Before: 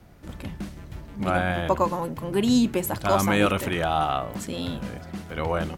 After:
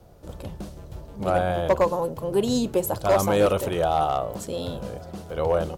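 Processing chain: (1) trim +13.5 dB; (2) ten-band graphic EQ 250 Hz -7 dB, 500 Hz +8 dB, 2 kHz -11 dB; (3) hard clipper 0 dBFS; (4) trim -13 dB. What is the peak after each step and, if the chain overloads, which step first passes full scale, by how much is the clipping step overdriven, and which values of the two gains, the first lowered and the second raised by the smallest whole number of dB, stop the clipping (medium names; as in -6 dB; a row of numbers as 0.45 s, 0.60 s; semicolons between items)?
+6.5 dBFS, +7.5 dBFS, 0.0 dBFS, -13.0 dBFS; step 1, 7.5 dB; step 1 +5.5 dB, step 4 -5 dB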